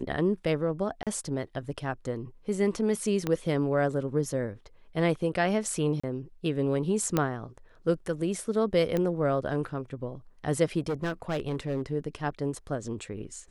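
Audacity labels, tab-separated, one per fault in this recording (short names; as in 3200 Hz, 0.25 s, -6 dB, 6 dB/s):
1.030000	1.070000	gap 37 ms
3.270000	3.270000	pop -15 dBFS
6.000000	6.040000	gap 35 ms
7.170000	7.170000	pop -11 dBFS
8.970000	8.970000	pop -16 dBFS
10.880000	11.820000	clipped -25.5 dBFS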